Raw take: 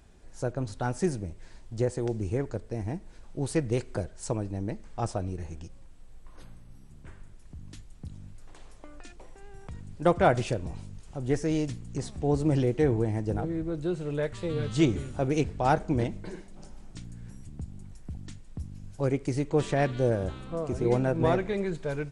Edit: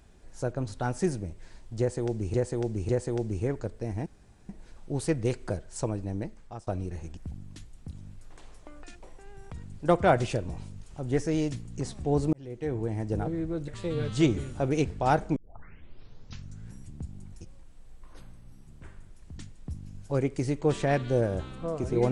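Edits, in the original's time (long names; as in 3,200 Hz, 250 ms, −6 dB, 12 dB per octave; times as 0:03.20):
0:01.79–0:02.34: repeat, 3 plays
0:02.96: splice in room tone 0.43 s
0:04.64–0:05.14: fade out, to −21 dB
0:05.64–0:07.61: swap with 0:18.00–0:18.27
0:12.50–0:13.33: fade in
0:13.85–0:14.27: remove
0:15.95: tape start 1.34 s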